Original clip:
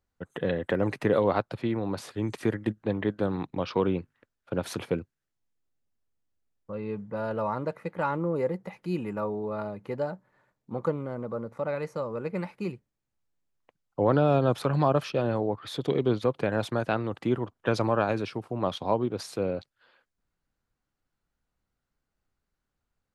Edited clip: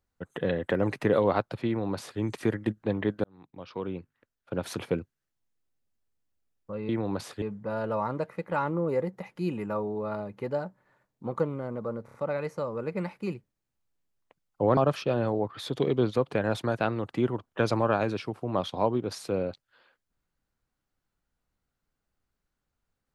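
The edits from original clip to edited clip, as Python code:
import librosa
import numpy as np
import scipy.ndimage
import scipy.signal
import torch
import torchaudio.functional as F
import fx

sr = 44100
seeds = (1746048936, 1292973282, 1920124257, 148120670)

y = fx.edit(x, sr, fx.duplicate(start_s=1.67, length_s=0.53, to_s=6.89),
    fx.fade_in_span(start_s=3.24, length_s=1.65),
    fx.stutter(start_s=11.52, slice_s=0.03, count=4),
    fx.cut(start_s=14.15, length_s=0.7), tone=tone)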